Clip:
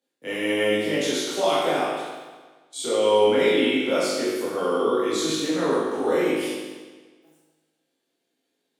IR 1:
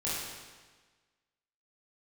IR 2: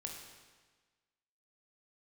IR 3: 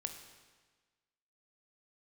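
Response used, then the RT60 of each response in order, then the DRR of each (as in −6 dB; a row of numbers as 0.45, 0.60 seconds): 1; 1.4, 1.4, 1.4 seconds; −9.0, 1.0, 6.0 decibels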